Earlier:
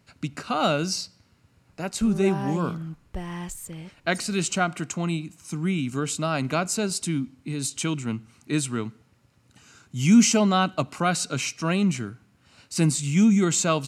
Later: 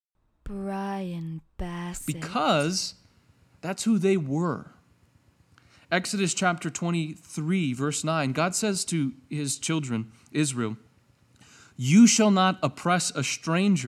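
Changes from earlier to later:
speech: entry +1.85 s
background: entry −1.55 s

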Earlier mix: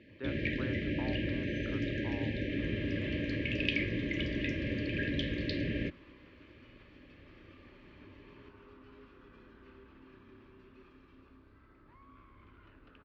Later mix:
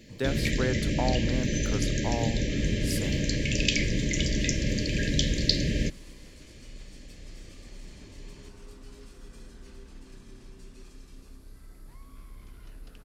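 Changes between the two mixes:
speech +10.5 dB
master: remove loudspeaker in its box 110–2,600 Hz, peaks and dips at 140 Hz −10 dB, 200 Hz −10 dB, 460 Hz −6 dB, 720 Hz −9 dB, 1,200 Hz +3 dB, 2,000 Hz −4 dB

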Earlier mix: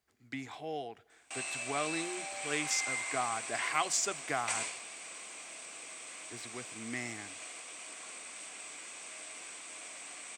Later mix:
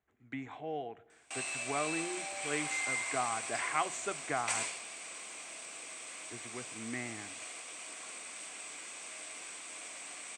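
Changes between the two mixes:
speech: add moving average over 9 samples
reverb: on, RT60 0.75 s

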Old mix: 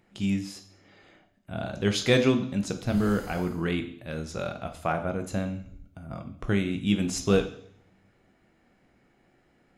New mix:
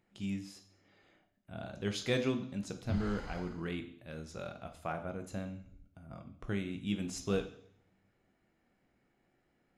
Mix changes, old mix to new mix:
speech −10.5 dB
background: add high-frequency loss of the air 150 metres

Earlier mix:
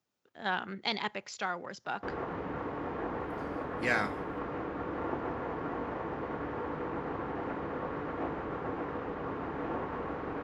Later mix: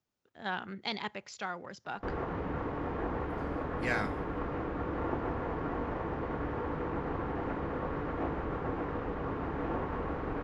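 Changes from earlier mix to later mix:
speech −3.5 dB
master: remove high-pass filter 180 Hz 6 dB per octave

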